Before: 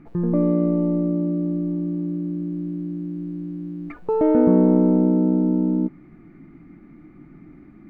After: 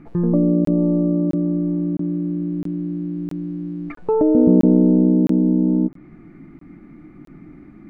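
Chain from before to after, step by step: treble ducked by the level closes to 470 Hz, closed at -15 dBFS; crackling interface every 0.66 s, samples 1024, zero, from 0.65; gain +3.5 dB

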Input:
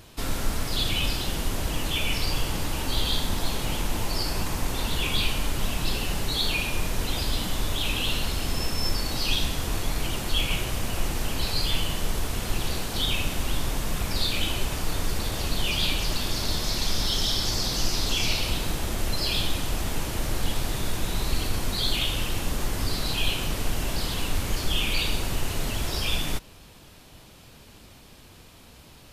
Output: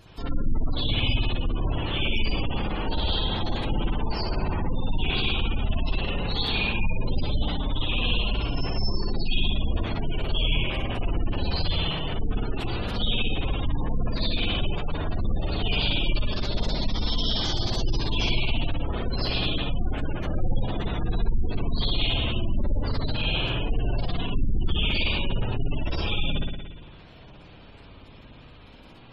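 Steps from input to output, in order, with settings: spring tank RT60 1.2 s, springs 58 ms, chirp 40 ms, DRR -5 dB; spectral gate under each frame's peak -25 dB strong; gain -3.5 dB

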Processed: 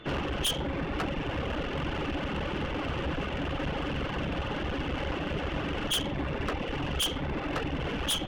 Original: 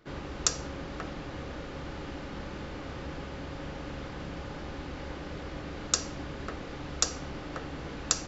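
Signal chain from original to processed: nonlinear frequency compression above 2600 Hz 4:1; reverb removal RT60 1.2 s; sine folder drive 12 dB, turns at -11 dBFS; whine 3500 Hz -52 dBFS; in parallel at -4 dB: hard clip -28.5 dBFS, distortion -4 dB; on the sum: tube stage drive 21 dB, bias 0.6; gain -4.5 dB

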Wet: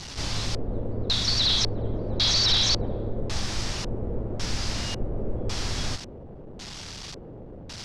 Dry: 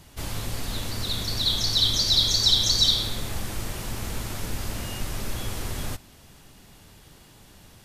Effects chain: delta modulation 64 kbps, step -35.5 dBFS; LFO low-pass square 0.91 Hz 490–5300 Hz; gain +1.5 dB

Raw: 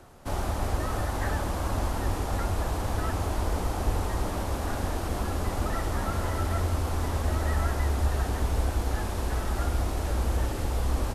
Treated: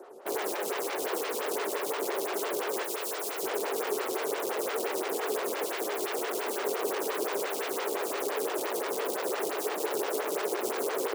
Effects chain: 2.83–3.43 tilt shelf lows -8 dB, about 860 Hz; wrapped overs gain 29 dB; resonant high-pass 410 Hz, resonance Q 4.8; photocell phaser 5.8 Hz; gain +1.5 dB

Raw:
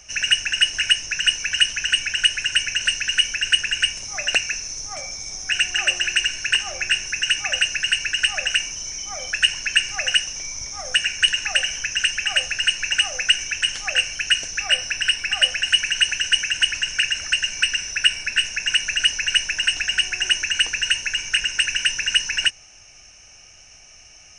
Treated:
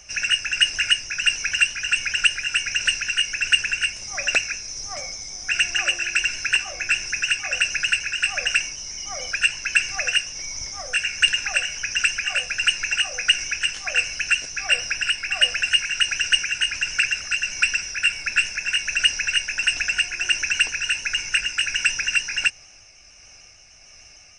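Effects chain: repeated pitch sweeps -1 st, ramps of 0.151 s

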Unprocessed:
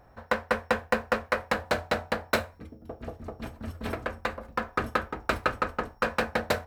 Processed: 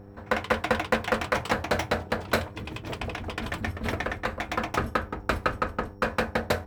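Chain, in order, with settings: echoes that change speed 0.143 s, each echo +6 st, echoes 2, each echo -6 dB; low shelf 210 Hz +5.5 dB; buzz 100 Hz, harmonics 5, -47 dBFS -3 dB/oct

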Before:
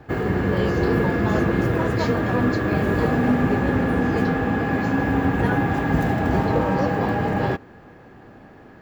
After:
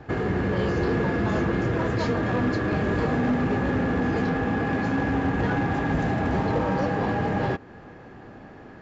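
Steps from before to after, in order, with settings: in parallel at +0.5 dB: compressor, threshold -30 dBFS, peak gain reduction 14.5 dB; on the sum: hard clip -13.5 dBFS, distortion -16 dB; downsampling 16000 Hz; gain -5 dB

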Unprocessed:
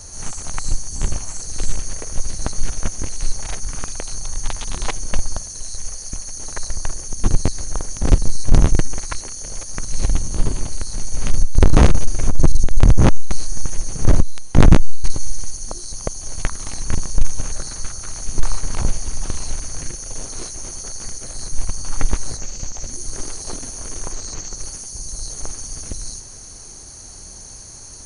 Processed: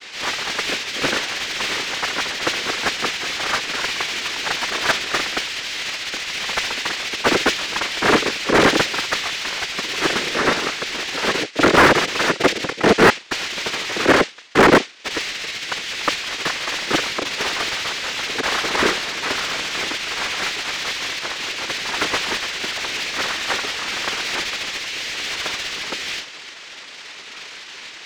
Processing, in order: noise vocoder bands 3; LPF 5000 Hz 12 dB/oct; low shelf 370 Hz -11.5 dB; overdrive pedal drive 33 dB, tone 2200 Hz, clips at -4 dBFS; expander -11 dBFS; gain +2.5 dB

